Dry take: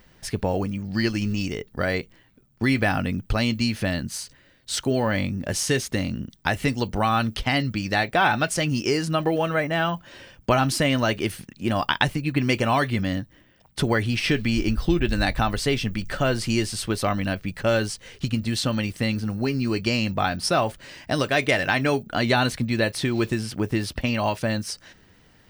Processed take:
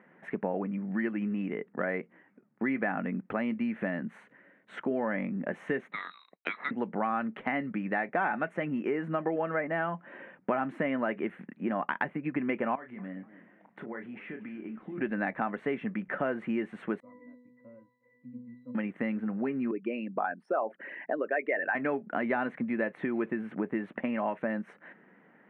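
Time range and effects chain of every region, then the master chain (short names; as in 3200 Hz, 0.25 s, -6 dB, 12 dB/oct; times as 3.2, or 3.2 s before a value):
5.92–6.71 inverted band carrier 4000 Hz + expander -48 dBFS
12.75–14.98 compressor 4:1, threshold -38 dBFS + doubler 32 ms -8.5 dB + warbling echo 0.242 s, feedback 41%, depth 215 cents, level -18 dB
17–18.75 bell 1600 Hz -5 dB 2.2 oct + upward compressor, threshold -32 dBFS + octave resonator B, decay 0.74 s
19.71–21.75 formant sharpening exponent 2 + HPF 350 Hz + upward compressor, threshold -34 dBFS
whole clip: elliptic band-pass 190–2000 Hz, stop band 40 dB; compressor 2:1, threshold -32 dBFS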